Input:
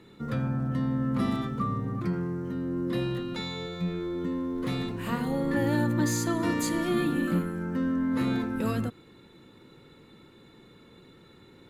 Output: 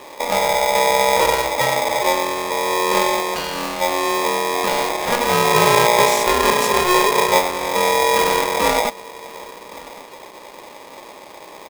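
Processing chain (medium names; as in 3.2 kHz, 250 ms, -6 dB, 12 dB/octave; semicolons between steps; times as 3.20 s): dynamic bell 170 Hz, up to -7 dB, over -42 dBFS, Q 0.79; harmony voices -12 st -9 dB; bass shelf 500 Hz +10 dB; delay 1121 ms -21.5 dB; polarity switched at an audio rate 720 Hz; trim +7 dB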